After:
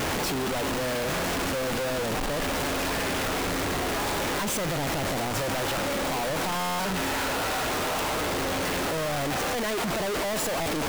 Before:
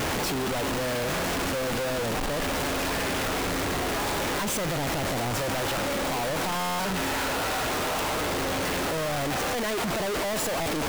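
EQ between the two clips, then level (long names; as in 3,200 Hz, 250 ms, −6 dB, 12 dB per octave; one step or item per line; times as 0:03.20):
mains-hum notches 60/120 Hz
0.0 dB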